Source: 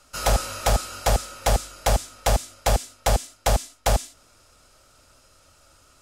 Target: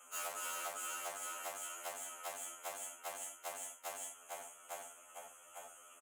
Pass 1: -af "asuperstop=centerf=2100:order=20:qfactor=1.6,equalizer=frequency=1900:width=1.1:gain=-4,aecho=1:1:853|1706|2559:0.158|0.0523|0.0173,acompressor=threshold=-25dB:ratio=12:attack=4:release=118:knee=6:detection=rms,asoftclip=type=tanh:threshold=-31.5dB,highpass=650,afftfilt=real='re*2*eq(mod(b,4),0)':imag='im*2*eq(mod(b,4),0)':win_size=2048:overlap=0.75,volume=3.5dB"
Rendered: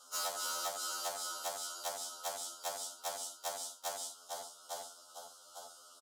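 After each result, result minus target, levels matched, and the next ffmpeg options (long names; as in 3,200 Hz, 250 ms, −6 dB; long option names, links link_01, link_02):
4,000 Hz band +5.5 dB; soft clipping: distortion −5 dB
-af "asuperstop=centerf=4600:order=20:qfactor=1.6,equalizer=frequency=1900:width=1.1:gain=-4,aecho=1:1:853|1706|2559:0.158|0.0523|0.0173,acompressor=threshold=-25dB:ratio=12:attack=4:release=118:knee=6:detection=rms,asoftclip=type=tanh:threshold=-31.5dB,highpass=650,afftfilt=real='re*2*eq(mod(b,4),0)':imag='im*2*eq(mod(b,4),0)':win_size=2048:overlap=0.75,volume=3.5dB"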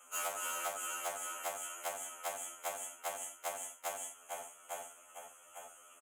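soft clipping: distortion −5 dB
-af "asuperstop=centerf=4600:order=20:qfactor=1.6,equalizer=frequency=1900:width=1.1:gain=-4,aecho=1:1:853|1706|2559:0.158|0.0523|0.0173,acompressor=threshold=-25dB:ratio=12:attack=4:release=118:knee=6:detection=rms,asoftclip=type=tanh:threshold=-38.5dB,highpass=650,afftfilt=real='re*2*eq(mod(b,4),0)':imag='im*2*eq(mod(b,4),0)':win_size=2048:overlap=0.75,volume=3.5dB"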